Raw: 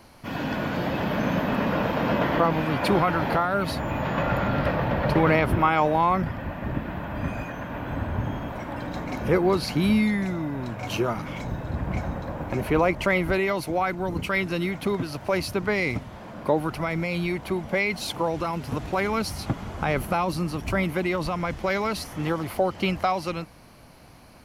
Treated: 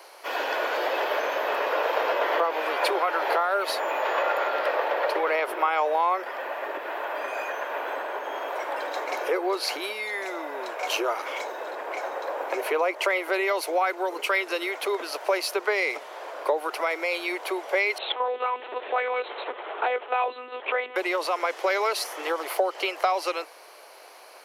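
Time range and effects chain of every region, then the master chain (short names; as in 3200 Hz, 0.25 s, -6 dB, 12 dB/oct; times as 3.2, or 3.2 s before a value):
17.98–20.96 comb 6.8 ms, depth 40% + monotone LPC vocoder at 8 kHz 250 Hz
whole clip: compressor, threshold -24 dBFS; steep high-pass 390 Hz 48 dB/oct; gain +5.5 dB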